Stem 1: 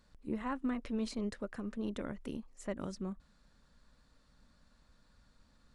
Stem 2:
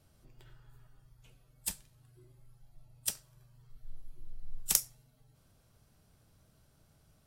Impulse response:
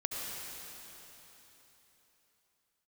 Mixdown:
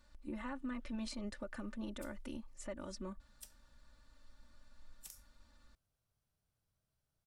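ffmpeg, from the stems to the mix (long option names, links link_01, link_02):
-filter_complex "[0:a]aecho=1:1:3.4:0.87,volume=-1.5dB[link_01];[1:a]adelay=350,volume=-18.5dB[link_02];[link_01][link_02]amix=inputs=2:normalize=0,equalizer=frequency=260:width=0.69:gain=-5,alimiter=level_in=10dB:limit=-24dB:level=0:latency=1:release=73,volume=-10dB"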